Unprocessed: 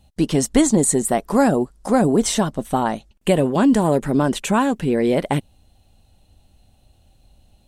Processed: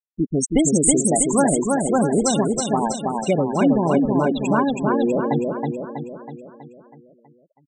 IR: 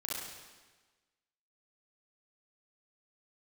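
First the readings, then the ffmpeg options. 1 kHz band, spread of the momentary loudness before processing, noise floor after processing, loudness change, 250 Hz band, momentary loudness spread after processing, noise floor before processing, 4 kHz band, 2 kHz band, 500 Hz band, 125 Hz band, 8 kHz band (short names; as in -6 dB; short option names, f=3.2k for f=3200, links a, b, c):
-0.5 dB, 6 LU, -58 dBFS, -0.5 dB, -1.0 dB, 11 LU, -58 dBFS, -4.0 dB, -2.5 dB, -0.5 dB, -1.5 dB, +3.0 dB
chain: -af "tiltshelf=f=1.5k:g=-3,afftfilt=real='re*gte(hypot(re,im),0.2)':imag='im*gte(hypot(re,im),0.2)':win_size=1024:overlap=0.75,aecho=1:1:323|646|969|1292|1615|1938|2261:0.708|0.375|0.199|0.105|0.0559|0.0296|0.0157"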